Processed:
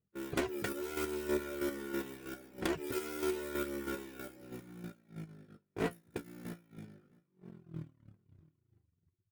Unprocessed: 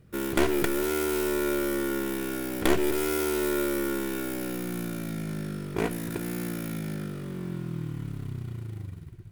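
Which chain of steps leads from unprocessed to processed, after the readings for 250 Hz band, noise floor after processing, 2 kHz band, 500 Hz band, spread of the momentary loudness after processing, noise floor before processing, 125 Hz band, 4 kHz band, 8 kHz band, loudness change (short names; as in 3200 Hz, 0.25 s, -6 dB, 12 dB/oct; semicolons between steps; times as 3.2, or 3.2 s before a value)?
-11.5 dB, -82 dBFS, -10.0 dB, -10.5 dB, 16 LU, -42 dBFS, -14.5 dB, -10.5 dB, -13.0 dB, -10.0 dB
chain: gate -30 dBFS, range -29 dB; reverb removal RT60 0.86 s; HPF 44 Hz; bell 12000 Hz -7 dB 0.47 oct; in parallel at -2.5 dB: compressor, threshold -44 dBFS, peak gain reduction 22.5 dB; on the sum: chopper 3.1 Hz, depth 60%, duty 25%; soft clip -21 dBFS, distortion -13 dB; flange 0.4 Hz, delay 4.3 ms, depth 10 ms, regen +50%; on a send: echo 0.665 s -23 dB; on the sum: mismatched tape noise reduction decoder only; gain +1 dB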